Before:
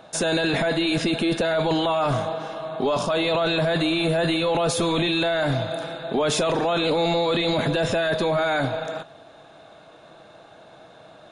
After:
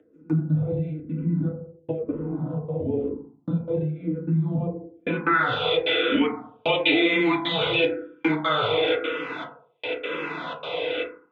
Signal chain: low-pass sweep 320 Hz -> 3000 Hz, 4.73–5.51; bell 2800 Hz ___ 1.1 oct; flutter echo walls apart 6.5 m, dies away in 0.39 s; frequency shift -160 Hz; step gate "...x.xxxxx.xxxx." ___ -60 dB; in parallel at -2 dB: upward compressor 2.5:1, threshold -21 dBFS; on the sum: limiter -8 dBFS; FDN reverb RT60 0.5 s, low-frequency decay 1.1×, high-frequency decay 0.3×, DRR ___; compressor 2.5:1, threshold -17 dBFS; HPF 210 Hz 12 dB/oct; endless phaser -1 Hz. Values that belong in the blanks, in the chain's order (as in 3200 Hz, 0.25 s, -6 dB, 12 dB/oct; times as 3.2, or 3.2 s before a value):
+8.5 dB, 151 bpm, -3 dB